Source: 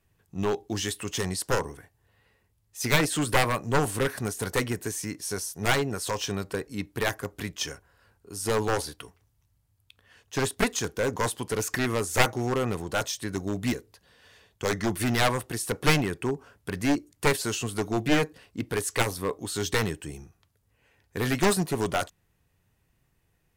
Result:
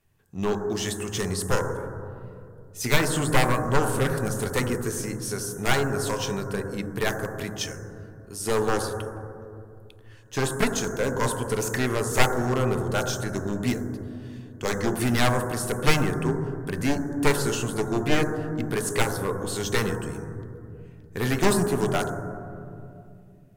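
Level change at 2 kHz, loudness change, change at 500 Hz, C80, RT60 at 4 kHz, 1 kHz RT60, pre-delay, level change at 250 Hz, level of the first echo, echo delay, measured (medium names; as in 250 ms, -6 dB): +1.0 dB, +1.5 dB, +2.5 dB, 7.0 dB, 1.0 s, 2.1 s, 5 ms, +2.5 dB, no echo, no echo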